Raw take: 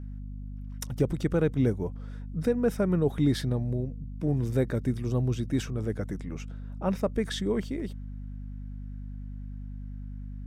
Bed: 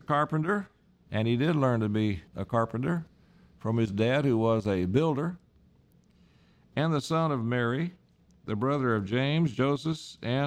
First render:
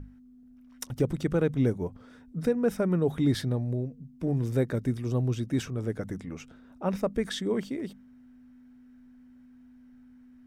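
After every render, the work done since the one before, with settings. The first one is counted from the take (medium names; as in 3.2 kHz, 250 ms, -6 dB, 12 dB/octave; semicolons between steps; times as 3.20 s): hum notches 50/100/150/200 Hz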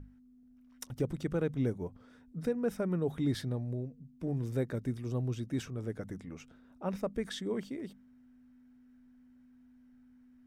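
trim -6.5 dB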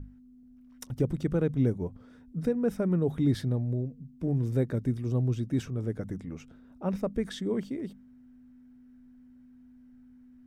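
bass shelf 460 Hz +7.5 dB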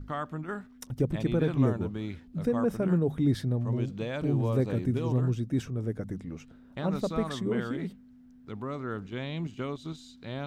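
add bed -8.5 dB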